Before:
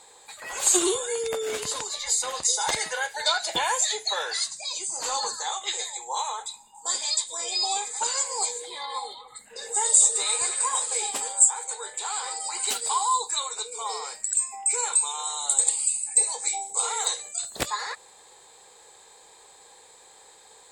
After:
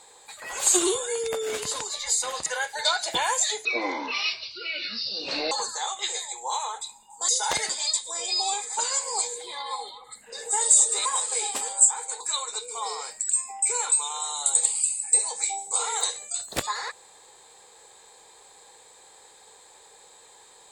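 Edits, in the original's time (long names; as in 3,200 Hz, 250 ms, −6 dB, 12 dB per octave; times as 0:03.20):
0:02.46–0:02.87: move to 0:06.93
0:04.06–0:05.16: play speed 59%
0:10.29–0:10.65: remove
0:11.80–0:13.24: remove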